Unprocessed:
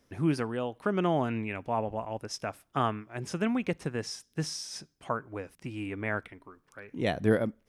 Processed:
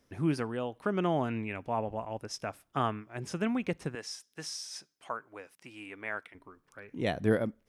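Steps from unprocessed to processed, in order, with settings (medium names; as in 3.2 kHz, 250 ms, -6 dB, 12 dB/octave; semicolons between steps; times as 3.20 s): 3.95–6.35 s: high-pass 840 Hz 6 dB/octave; trim -2 dB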